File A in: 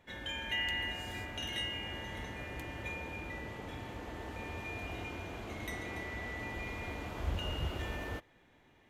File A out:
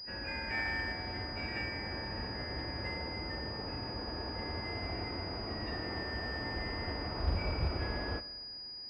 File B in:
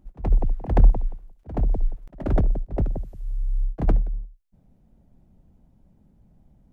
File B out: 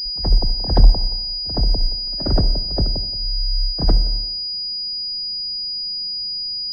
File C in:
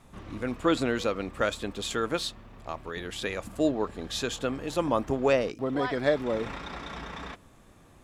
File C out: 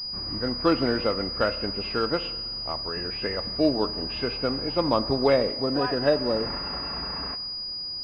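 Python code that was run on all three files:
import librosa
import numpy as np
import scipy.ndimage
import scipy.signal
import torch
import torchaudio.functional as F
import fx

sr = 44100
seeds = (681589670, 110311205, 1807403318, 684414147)

y = fx.freq_compress(x, sr, knee_hz=1500.0, ratio=1.5)
y = fx.rev_schroeder(y, sr, rt60_s=1.4, comb_ms=29, drr_db=14.0)
y = fx.pwm(y, sr, carrier_hz=4900.0)
y = y * 10.0 ** (3.0 / 20.0)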